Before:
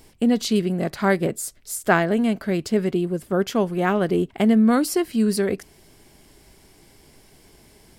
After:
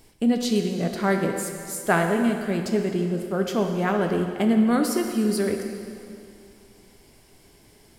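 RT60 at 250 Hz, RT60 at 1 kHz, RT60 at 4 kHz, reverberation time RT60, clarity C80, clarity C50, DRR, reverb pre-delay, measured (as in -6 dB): 2.5 s, 2.5 s, 2.3 s, 2.5 s, 6.0 dB, 5.0 dB, 3.5 dB, 5 ms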